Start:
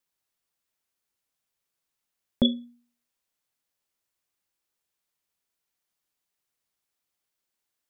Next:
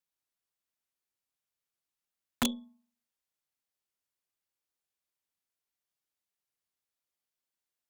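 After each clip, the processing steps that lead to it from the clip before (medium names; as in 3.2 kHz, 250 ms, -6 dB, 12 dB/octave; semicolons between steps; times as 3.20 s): Chebyshev shaper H 8 -29 dB, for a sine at -10 dBFS; integer overflow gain 12 dB; de-hum 217 Hz, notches 5; trim -7.5 dB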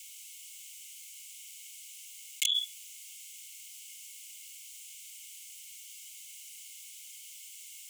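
rippled Chebyshev high-pass 2.1 kHz, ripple 9 dB; level flattener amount 100%; trim +7 dB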